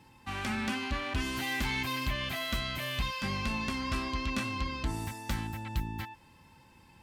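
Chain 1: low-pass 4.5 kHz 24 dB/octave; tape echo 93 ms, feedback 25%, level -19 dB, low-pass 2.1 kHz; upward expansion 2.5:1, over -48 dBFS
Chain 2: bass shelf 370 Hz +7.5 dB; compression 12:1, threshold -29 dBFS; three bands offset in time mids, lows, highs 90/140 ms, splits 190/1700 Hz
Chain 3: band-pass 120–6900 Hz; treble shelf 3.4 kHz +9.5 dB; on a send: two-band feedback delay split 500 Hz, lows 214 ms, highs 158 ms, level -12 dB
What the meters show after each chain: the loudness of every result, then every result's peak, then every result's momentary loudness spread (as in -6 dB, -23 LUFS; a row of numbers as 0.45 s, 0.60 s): -42.5 LUFS, -36.0 LUFS, -31.5 LUFS; -23.0 dBFS, -21.0 dBFS, -18.0 dBFS; 6 LU, 6 LU, 9 LU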